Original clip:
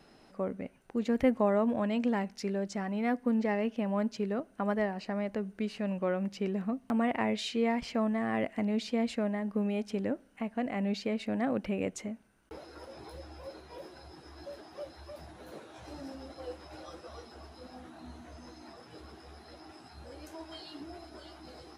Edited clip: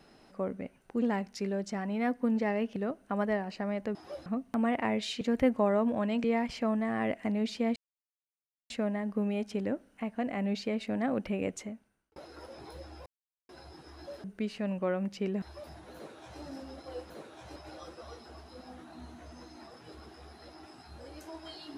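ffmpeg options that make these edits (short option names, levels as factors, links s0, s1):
-filter_complex "[0:a]asplit=15[s0][s1][s2][s3][s4][s5][s6][s7][s8][s9][s10][s11][s12][s13][s14];[s0]atrim=end=1.022[s15];[s1]atrim=start=2.048:end=3.792[s16];[s2]atrim=start=4.248:end=5.442[s17];[s3]atrim=start=14.628:end=14.942[s18];[s4]atrim=start=6.618:end=7.572[s19];[s5]atrim=start=1.018:end=2.052[s20];[s6]atrim=start=7.568:end=9.09,asetpts=PTS-STARTPTS,afade=t=out:st=1.518:d=0.004:c=hsin,apad=pad_dur=0.94[s21];[s7]atrim=start=9.09:end=12.55,asetpts=PTS-STARTPTS,afade=t=in:d=0.004:c=hsin,afade=t=out:st=2.85:d=0.61[s22];[s8]atrim=start=12.55:end=13.45,asetpts=PTS-STARTPTS,afade=t=in:d=0.004:c=hsin,afade=t=out:st=0.896:d=0.004:c=hsin[s23];[s9]atrim=start=13.45:end=13.88,asetpts=PTS-STARTPTS,volume=0[s24];[s10]atrim=start=13.88:end=14.632,asetpts=PTS-STARTPTS,afade=t=in:d=0.004:c=hsin[s25];[s11]atrim=start=5.438:end=6.622[s26];[s12]atrim=start=14.938:end=16.622[s27];[s13]atrim=start=15.468:end=15.932[s28];[s14]atrim=start=16.618[s29];[s15][s16]acrossfade=d=0.004:c1=hsin:c2=hsin[s30];[s30][s17]acrossfade=d=0.004:c1=hsin:c2=hsin[s31];[s31][s18]acrossfade=d=0.004:c1=hsin:c2=hsin[s32];[s32][s19]acrossfade=d=0.004:c1=hsin:c2=hsin[s33];[s33][s20]acrossfade=d=0.004:c1=hsin:c2=hsin[s34];[s21][s22][s23][s24][s25]concat=n=5:v=0:a=1[s35];[s34][s35]acrossfade=d=0.004:c1=hsin:c2=hsin[s36];[s36][s26]acrossfade=d=0.004:c1=hsin:c2=hsin[s37];[s37][s27]acrossfade=d=0.004:c1=hsin:c2=hsin[s38];[s38][s28]acrossfade=d=0.004:c1=hsin:c2=hsin[s39];[s39][s29]acrossfade=d=0.004:c1=hsin:c2=hsin"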